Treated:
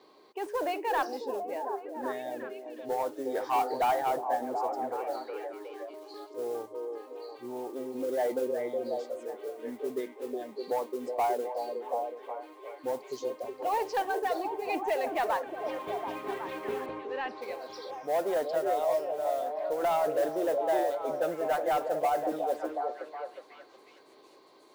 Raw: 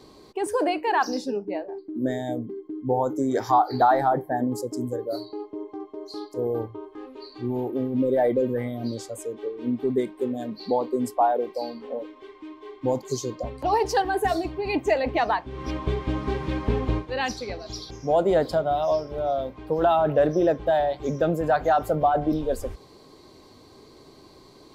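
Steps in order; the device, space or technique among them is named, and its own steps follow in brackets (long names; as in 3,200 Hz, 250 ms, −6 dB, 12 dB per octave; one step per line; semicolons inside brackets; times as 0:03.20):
carbon microphone (band-pass filter 450–3,400 Hz; soft clipping −17 dBFS, distortion −16 dB; noise that follows the level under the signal 22 dB)
0:16.86–0:17.42: high-frequency loss of the air 300 metres
echo through a band-pass that steps 366 ms, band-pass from 420 Hz, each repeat 0.7 octaves, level −2.5 dB
level −4.5 dB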